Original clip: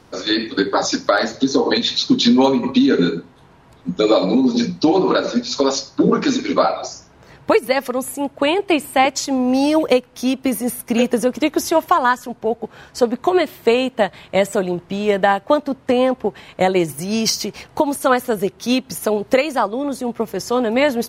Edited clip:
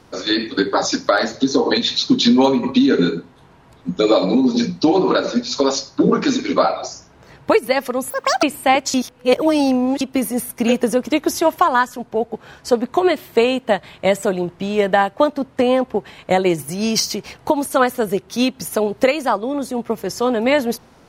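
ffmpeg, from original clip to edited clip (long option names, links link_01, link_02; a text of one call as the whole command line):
ffmpeg -i in.wav -filter_complex "[0:a]asplit=5[link_01][link_02][link_03][link_04][link_05];[link_01]atrim=end=8.104[link_06];[link_02]atrim=start=8.1:end=8.73,asetpts=PTS-STARTPTS,asetrate=84231,aresample=44100,atrim=end_sample=14546,asetpts=PTS-STARTPTS[link_07];[link_03]atrim=start=8.726:end=9.242[link_08];[link_04]atrim=start=9.238:end=10.312,asetpts=PTS-STARTPTS,areverse[link_09];[link_05]atrim=start=10.308[link_10];[link_06][link_07]acrossfade=duration=0.004:curve1=hsin:curve2=hsin[link_11];[link_11][link_08]acrossfade=duration=0.004:curve1=hsin:curve2=hsin[link_12];[link_12][link_09]acrossfade=duration=0.004:curve1=hsin:curve2=hsin[link_13];[link_13][link_10]acrossfade=duration=0.004:curve1=hsin:curve2=hsin" out.wav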